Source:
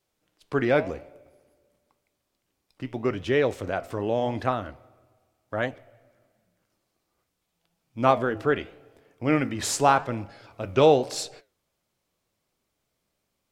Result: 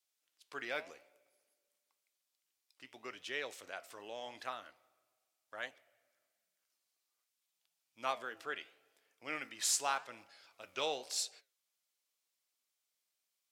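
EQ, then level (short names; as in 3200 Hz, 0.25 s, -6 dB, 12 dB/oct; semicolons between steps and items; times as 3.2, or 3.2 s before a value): differentiator; low shelf 100 Hz -7.5 dB; high shelf 7900 Hz -11 dB; +1.5 dB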